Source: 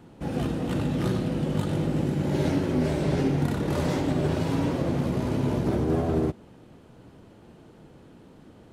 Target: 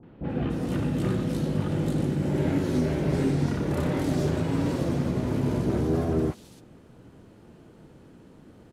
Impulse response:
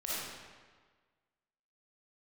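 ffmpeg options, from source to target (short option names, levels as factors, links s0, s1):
-filter_complex "[0:a]acrossover=split=800|3300[s0][s1][s2];[s1]adelay=30[s3];[s2]adelay=290[s4];[s0][s3][s4]amix=inputs=3:normalize=0"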